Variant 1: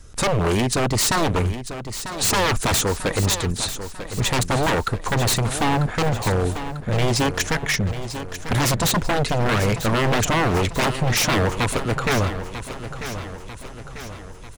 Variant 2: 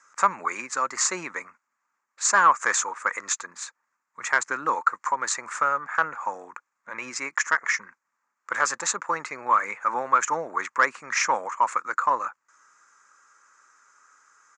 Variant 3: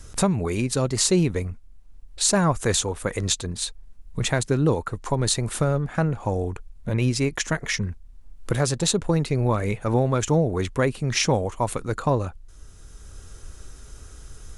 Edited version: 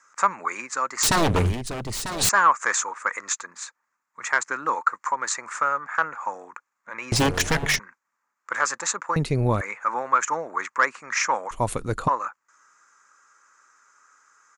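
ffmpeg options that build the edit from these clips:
-filter_complex "[0:a]asplit=2[a][b];[2:a]asplit=2[c][d];[1:a]asplit=5[e][f][g][h][i];[e]atrim=end=1.032[j];[a]atrim=start=1.028:end=2.292[k];[f]atrim=start=2.288:end=7.122[l];[b]atrim=start=7.118:end=7.792[m];[g]atrim=start=7.788:end=9.162[n];[c]atrim=start=9.158:end=9.612[o];[h]atrim=start=9.608:end=11.512[p];[d]atrim=start=11.508:end=12.082[q];[i]atrim=start=12.078[r];[j][k]acrossfade=d=0.004:c1=hsin:c2=hsin[s];[s][l]acrossfade=d=0.004:c1=hsin:c2=hsin[t];[t][m]acrossfade=d=0.004:c1=hsin:c2=hsin[u];[u][n]acrossfade=d=0.004:c1=hsin:c2=hsin[v];[v][o]acrossfade=d=0.004:c1=hsin:c2=hsin[w];[w][p]acrossfade=d=0.004:c1=hsin:c2=hsin[x];[x][q]acrossfade=d=0.004:c1=hsin:c2=hsin[y];[y][r]acrossfade=d=0.004:c1=hsin:c2=hsin"

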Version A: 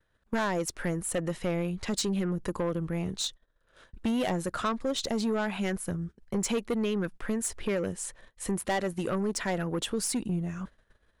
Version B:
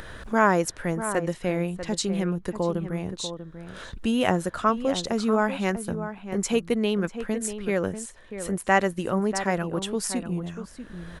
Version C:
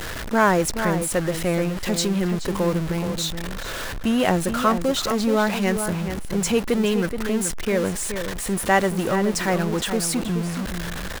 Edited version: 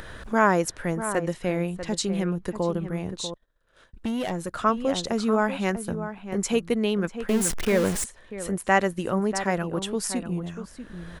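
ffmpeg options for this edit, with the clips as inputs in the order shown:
-filter_complex "[1:a]asplit=3[a][b][c];[a]atrim=end=3.342[d];[0:a]atrim=start=3.338:end=4.632[e];[b]atrim=start=4.628:end=7.292[f];[2:a]atrim=start=7.288:end=8.042[g];[c]atrim=start=8.038[h];[d][e]acrossfade=d=0.004:c1=hsin:c2=hsin[i];[i][f]acrossfade=d=0.004:c1=hsin:c2=hsin[j];[j][g]acrossfade=d=0.004:c1=hsin:c2=hsin[k];[k][h]acrossfade=d=0.004:c1=hsin:c2=hsin"

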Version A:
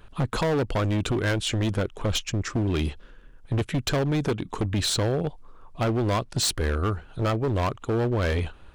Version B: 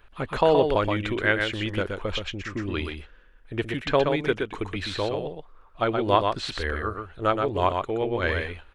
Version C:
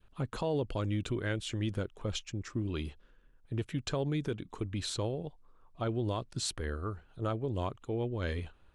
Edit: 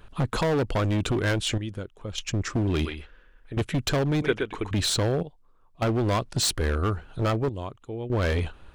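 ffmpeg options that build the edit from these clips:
-filter_complex "[2:a]asplit=3[a][b][c];[1:a]asplit=2[d][e];[0:a]asplit=6[f][g][h][i][j][k];[f]atrim=end=1.582[l];[a]atrim=start=1.578:end=2.182[m];[g]atrim=start=2.178:end=2.852[n];[d]atrim=start=2.848:end=3.572[o];[h]atrim=start=3.568:end=4.222[p];[e]atrim=start=4.218:end=4.712[q];[i]atrim=start=4.708:end=5.232[r];[b]atrim=start=5.228:end=5.822[s];[j]atrim=start=5.818:end=7.492[t];[c]atrim=start=7.488:end=8.102[u];[k]atrim=start=8.098[v];[l][m]acrossfade=d=0.004:c1=hsin:c2=hsin[w];[w][n]acrossfade=d=0.004:c1=hsin:c2=hsin[x];[x][o]acrossfade=d=0.004:c1=hsin:c2=hsin[y];[y][p]acrossfade=d=0.004:c1=hsin:c2=hsin[z];[z][q]acrossfade=d=0.004:c1=hsin:c2=hsin[aa];[aa][r]acrossfade=d=0.004:c1=hsin:c2=hsin[ab];[ab][s]acrossfade=d=0.004:c1=hsin:c2=hsin[ac];[ac][t]acrossfade=d=0.004:c1=hsin:c2=hsin[ad];[ad][u]acrossfade=d=0.004:c1=hsin:c2=hsin[ae];[ae][v]acrossfade=d=0.004:c1=hsin:c2=hsin"

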